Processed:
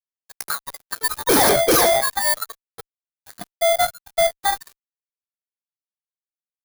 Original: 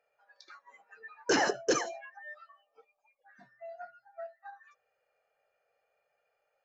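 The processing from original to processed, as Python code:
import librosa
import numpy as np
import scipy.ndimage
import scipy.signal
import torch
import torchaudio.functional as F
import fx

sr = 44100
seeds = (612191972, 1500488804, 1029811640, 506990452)

y = fx.bit_reversed(x, sr, seeds[0], block=16)
y = fx.fuzz(y, sr, gain_db=46.0, gate_db=-54.0)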